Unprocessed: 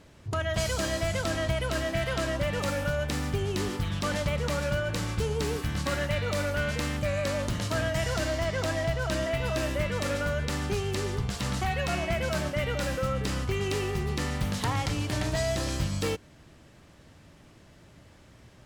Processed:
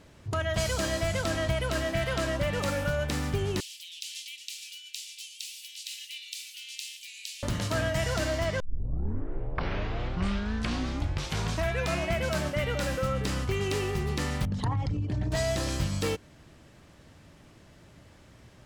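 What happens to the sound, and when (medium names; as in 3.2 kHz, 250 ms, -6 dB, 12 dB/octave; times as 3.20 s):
3.60–7.43 s: steep high-pass 2.6 kHz 48 dB/octave
8.60 s: tape start 3.49 s
14.45–15.32 s: resonances exaggerated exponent 2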